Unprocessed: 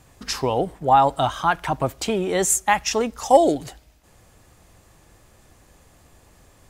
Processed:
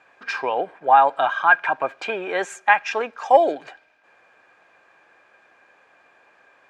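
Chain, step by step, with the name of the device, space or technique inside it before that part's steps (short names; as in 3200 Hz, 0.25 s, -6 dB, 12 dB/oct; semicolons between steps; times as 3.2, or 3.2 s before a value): tin-can telephone (BPF 590–2300 Hz; small resonant body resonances 1600/2400 Hz, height 17 dB, ringing for 50 ms); gain +2.5 dB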